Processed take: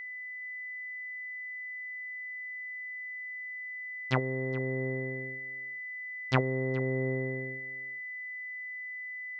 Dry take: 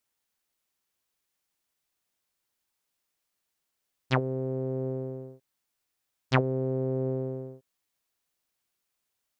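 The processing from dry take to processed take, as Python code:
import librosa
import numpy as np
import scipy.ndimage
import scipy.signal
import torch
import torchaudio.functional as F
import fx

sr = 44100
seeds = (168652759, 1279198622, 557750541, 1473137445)

y = x + 10.0 ** (-36.0 / 20.0) * np.sin(2.0 * np.pi * 2000.0 * np.arange(len(x)) / sr)
y = y + 10.0 ** (-19.0 / 20.0) * np.pad(y, (int(420 * sr / 1000.0), 0))[:len(y)]
y = y * librosa.db_to_amplitude(-2.5)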